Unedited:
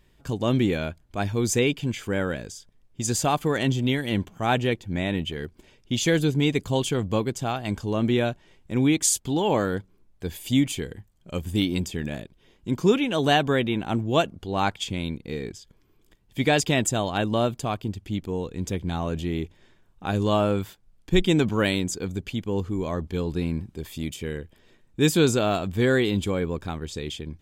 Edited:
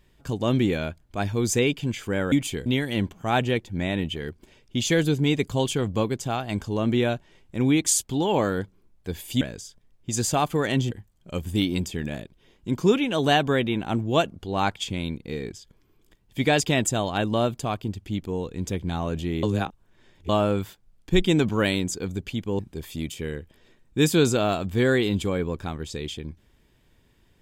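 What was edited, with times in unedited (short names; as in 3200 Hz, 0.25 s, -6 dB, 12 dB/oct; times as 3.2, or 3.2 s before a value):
2.32–3.82 swap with 10.57–10.91
19.43–20.29 reverse
22.59–23.61 cut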